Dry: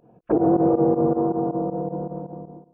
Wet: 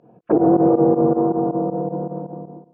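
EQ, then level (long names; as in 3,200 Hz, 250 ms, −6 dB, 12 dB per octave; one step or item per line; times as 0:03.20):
high-pass filter 110 Hz
high-frequency loss of the air 120 metres
+4.0 dB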